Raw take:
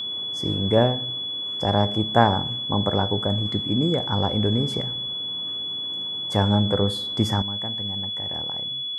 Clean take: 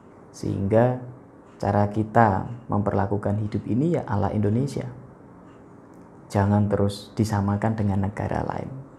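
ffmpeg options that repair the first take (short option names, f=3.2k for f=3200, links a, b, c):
-af "bandreject=f=3.4k:w=30,asetnsamples=n=441:p=0,asendcmd='7.42 volume volume 11.5dB',volume=0dB"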